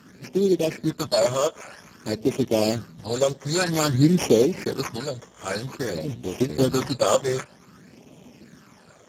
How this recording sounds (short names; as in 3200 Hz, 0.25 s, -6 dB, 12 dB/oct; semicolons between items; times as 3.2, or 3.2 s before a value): aliases and images of a low sample rate 3900 Hz, jitter 0%; phasing stages 12, 0.52 Hz, lowest notch 250–1600 Hz; Speex